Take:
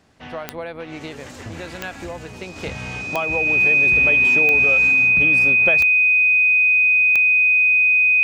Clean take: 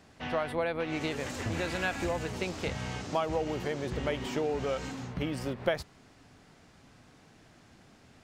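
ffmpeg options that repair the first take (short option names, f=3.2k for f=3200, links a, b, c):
-af "adeclick=t=4,bandreject=f=2.5k:w=30,asetnsamples=n=441:p=0,asendcmd='2.56 volume volume -4.5dB',volume=0dB"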